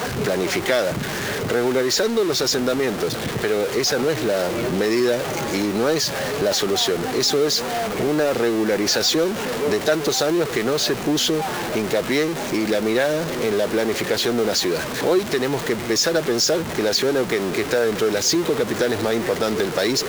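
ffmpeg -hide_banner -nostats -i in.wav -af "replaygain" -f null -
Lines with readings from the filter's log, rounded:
track_gain = +1.8 dB
track_peak = 0.348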